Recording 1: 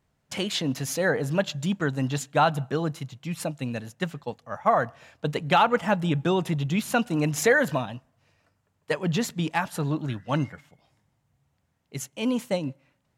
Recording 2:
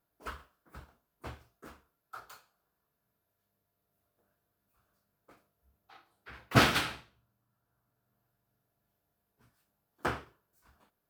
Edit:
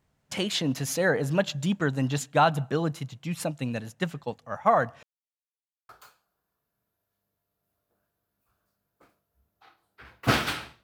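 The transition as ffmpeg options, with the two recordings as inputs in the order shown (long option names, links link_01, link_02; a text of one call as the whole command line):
ffmpeg -i cue0.wav -i cue1.wav -filter_complex "[0:a]apad=whole_dur=10.83,atrim=end=10.83,asplit=2[link_01][link_02];[link_01]atrim=end=5.03,asetpts=PTS-STARTPTS,afade=type=out:start_time=5.026:duration=0.004:curve=hsin[link_03];[link_02]atrim=start=5.03:end=5.89,asetpts=PTS-STARTPTS,volume=0[link_04];[1:a]atrim=start=2.17:end=7.11,asetpts=PTS-STARTPTS,afade=type=in:duration=0.004:curve=hsin[link_05];[link_03][link_04][link_05]concat=n=3:v=0:a=1" out.wav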